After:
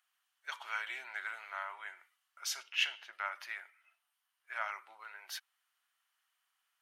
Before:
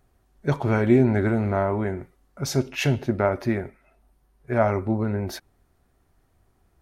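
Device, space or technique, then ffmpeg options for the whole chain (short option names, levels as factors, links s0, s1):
headphones lying on a table: -filter_complex "[0:a]highpass=f=1200:w=0.5412,highpass=f=1200:w=1.3066,equalizer=f=3000:t=o:w=0.28:g=11,asettb=1/sr,asplit=3[s0][s1][s2];[s0]atrim=end=2.634[s3];[s1]atrim=start=2.63:end=3.13,asetpts=PTS-STARTPTS,afade=t=in:d=0.004:c=qsin,afade=t=out:st=0.496:d=0.004:c=qsin,highshelf=f=6600:g=-11[s4];[s2]atrim=start=3.126[s5];[s3][s4]acrossfade=d=0.004:c1=hsin:c2=qsin[s6];[s6][s5]acrossfade=d=0.004:c1=qsin:c2=hsin,volume=0.501"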